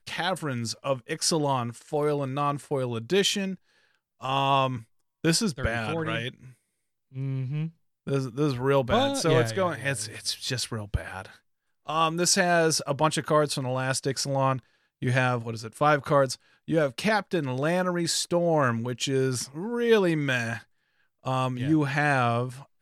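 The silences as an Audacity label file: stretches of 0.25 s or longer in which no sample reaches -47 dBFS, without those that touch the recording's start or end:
3.550000	4.210000	silence
4.830000	5.240000	silence
6.520000	7.130000	silence
7.700000	8.070000	silence
11.370000	11.870000	silence
14.630000	15.020000	silence
16.360000	16.680000	silence
20.620000	21.250000	silence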